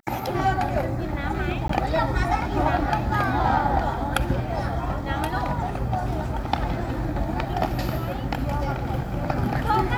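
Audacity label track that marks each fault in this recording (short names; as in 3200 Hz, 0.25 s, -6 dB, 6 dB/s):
1.680000	1.690000	gap 14 ms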